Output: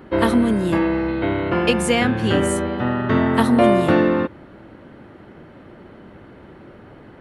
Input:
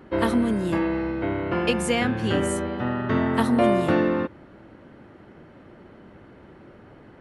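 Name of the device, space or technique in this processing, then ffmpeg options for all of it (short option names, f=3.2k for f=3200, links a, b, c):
exciter from parts: -filter_complex "[0:a]asettb=1/sr,asplit=3[a][b][c];[a]atrim=end=1.084[d];[b]atrim=start=1.08:end=1.5,asetpts=PTS-STARTPTS,afade=t=in:d=0.004:c=qsin,afade=t=out:st=0.416:d=0.004:c=qsin,highshelf=f=5.3k:t=q:w=3:g=-9.5[e];[c]atrim=start=1.496[f];[d][e]acrossfade=d=0.004:c1=hsin:c2=qsin[g];[g][f]acrossfade=d=0.004:c1=qsin:c2=hsin,asplit=2[h][i];[i]highpass=f=3k:w=0.5412,highpass=f=3k:w=1.3066,asoftclip=type=tanh:threshold=-39.5dB,highpass=f=3.8k:w=0.5412,highpass=f=3.8k:w=1.3066,volume=-11dB[j];[h][j]amix=inputs=2:normalize=0,volume=5dB"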